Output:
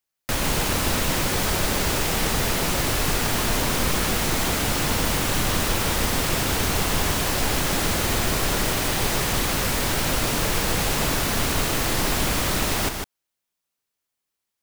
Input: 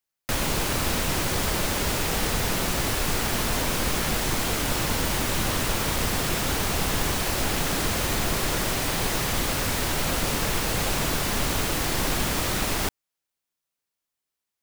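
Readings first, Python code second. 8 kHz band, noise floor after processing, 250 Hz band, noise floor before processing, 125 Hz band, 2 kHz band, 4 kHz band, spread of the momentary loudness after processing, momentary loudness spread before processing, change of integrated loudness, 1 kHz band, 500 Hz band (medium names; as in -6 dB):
+2.5 dB, -83 dBFS, +2.5 dB, -85 dBFS, +2.5 dB, +2.5 dB, +2.5 dB, 0 LU, 0 LU, +2.5 dB, +2.5 dB, +2.5 dB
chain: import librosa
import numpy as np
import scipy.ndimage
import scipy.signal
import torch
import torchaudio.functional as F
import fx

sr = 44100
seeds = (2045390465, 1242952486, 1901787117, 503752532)

y = x + 10.0 ** (-5.5 / 20.0) * np.pad(x, (int(152 * sr / 1000.0), 0))[:len(x)]
y = F.gain(torch.from_numpy(y), 1.5).numpy()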